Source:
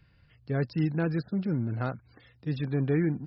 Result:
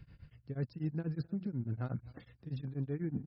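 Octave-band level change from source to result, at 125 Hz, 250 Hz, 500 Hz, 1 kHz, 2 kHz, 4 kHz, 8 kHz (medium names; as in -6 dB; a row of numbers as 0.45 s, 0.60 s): -8.0 dB, -9.5 dB, -12.5 dB, -13.5 dB, -16.5 dB, under -10 dB, no reading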